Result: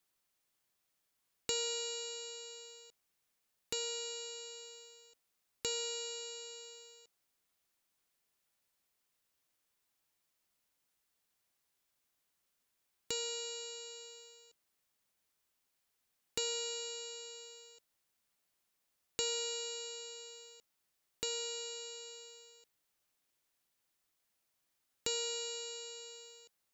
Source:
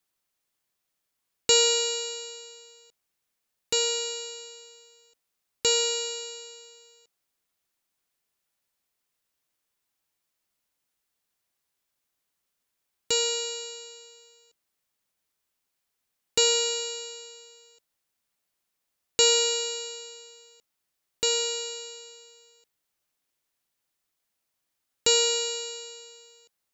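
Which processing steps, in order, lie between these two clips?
downward compressor 2 to 1, threshold −45 dBFS, peak gain reduction 15.5 dB
level −1 dB

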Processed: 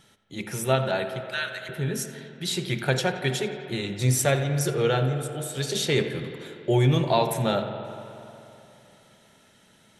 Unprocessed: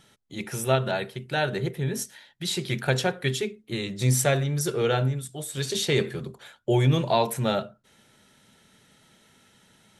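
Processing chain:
0:01.20–0:01.69: Butterworth high-pass 1,000 Hz 72 dB per octave
tape delay 87 ms, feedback 87%, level −13.5 dB, low-pass 3,500 Hz
on a send at −10 dB: convolution reverb RT60 2.8 s, pre-delay 49 ms

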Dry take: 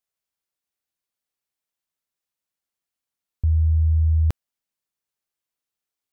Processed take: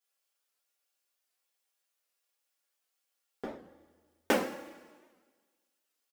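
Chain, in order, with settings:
high-pass filter 350 Hz 24 dB per octave
comb filter 3.6 ms, depth 49%
leveller curve on the samples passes 3
coupled-rooms reverb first 0.43 s, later 1.5 s, from −15 dB, DRR −9.5 dB
wow of a warped record 78 rpm, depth 160 cents

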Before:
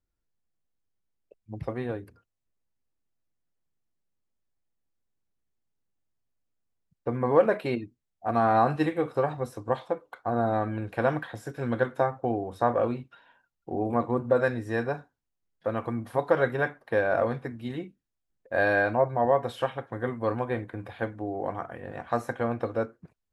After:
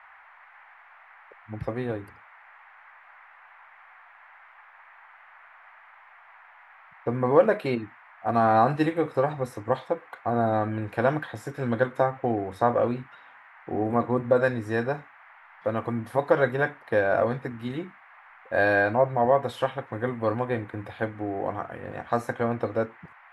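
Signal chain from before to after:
noise in a band 740–2,100 Hz −54 dBFS
level +2 dB

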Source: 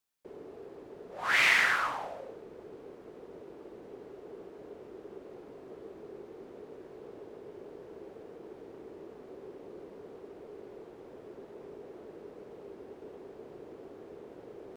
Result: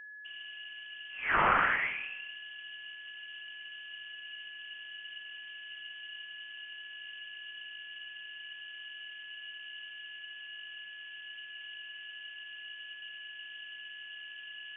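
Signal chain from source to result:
steady tone 1,600 Hz −44 dBFS
voice inversion scrambler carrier 3,300 Hz
level −1.5 dB

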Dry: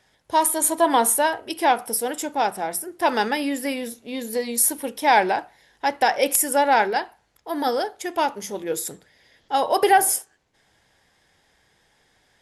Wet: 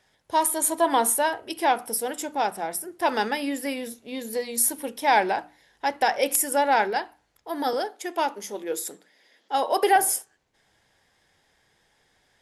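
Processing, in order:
0:07.73–0:09.96: high-pass filter 220 Hz 24 dB per octave
mains-hum notches 60/120/180/240/300 Hz
level −3 dB

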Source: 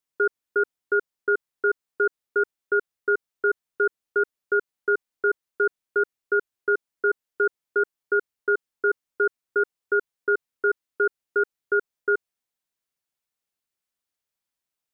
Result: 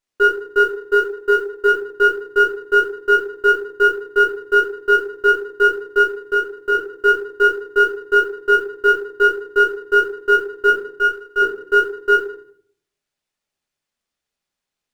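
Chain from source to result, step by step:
0:00.60–0:01.69: spectral envelope exaggerated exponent 2
0:06.02–0:06.75: downward compressor 1.5 to 1, threshold −29 dBFS, peak gain reduction 4.5 dB
0:10.70–0:11.42: high-pass filter 950 Hz 6 dB per octave
floating-point word with a short mantissa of 4 bits
rectangular room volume 77 cubic metres, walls mixed, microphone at 1.3 metres
windowed peak hold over 3 samples

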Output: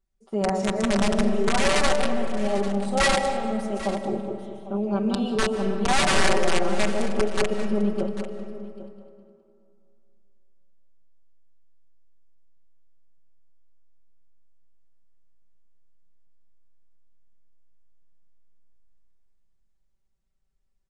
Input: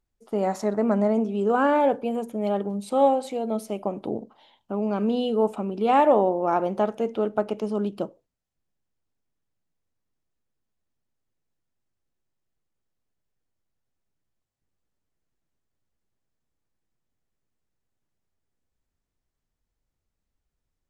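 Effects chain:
feedback delay that plays each chunk backwards 103 ms, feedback 61%, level −4.5 dB
wrap-around overflow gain 13 dB
low-shelf EQ 130 Hz +4.5 dB
on a send: single-tap delay 795 ms −15.5 dB
on the sum: comb and all-pass reverb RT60 2.6 s, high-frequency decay 0.45×, pre-delay 105 ms, DRR 10.5 dB
downsampling to 22,050 Hz
comb filter 5.2 ms, depth 89%
level −5.5 dB

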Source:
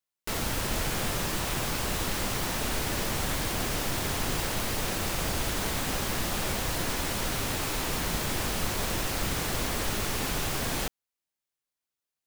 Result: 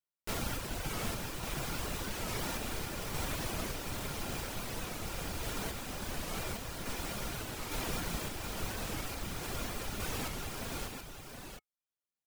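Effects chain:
hollow resonant body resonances 1,400/2,400 Hz, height 9 dB, ringing for 90 ms
reverb reduction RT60 0.77 s
in parallel at −11 dB: decimation without filtering 19×
on the sum: sample-and-hold tremolo 3.5 Hz
single-tap delay 720 ms −6.5 dB
wow of a warped record 45 rpm, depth 160 cents
level −5.5 dB

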